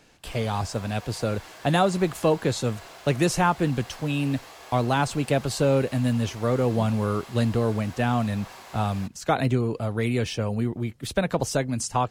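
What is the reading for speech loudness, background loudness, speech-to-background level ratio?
-25.5 LUFS, -44.5 LUFS, 19.0 dB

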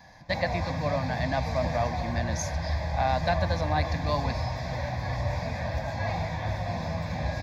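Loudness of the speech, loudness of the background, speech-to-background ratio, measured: -31.5 LUFS, -31.5 LUFS, 0.0 dB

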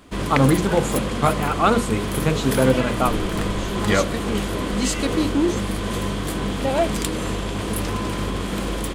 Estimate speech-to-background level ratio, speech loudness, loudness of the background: 3.0 dB, -21.5 LUFS, -24.5 LUFS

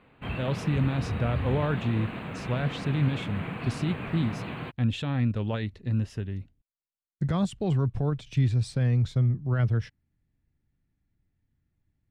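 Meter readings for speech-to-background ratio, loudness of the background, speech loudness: 6.5 dB, -35.0 LUFS, -28.5 LUFS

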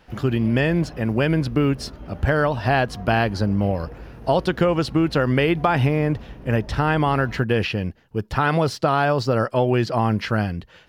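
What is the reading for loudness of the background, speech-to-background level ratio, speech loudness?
-40.5 LUFS, 19.0 dB, -21.5 LUFS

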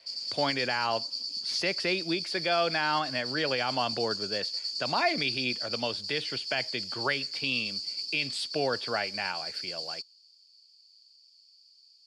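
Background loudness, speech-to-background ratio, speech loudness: -33.0 LUFS, 2.0 dB, -31.0 LUFS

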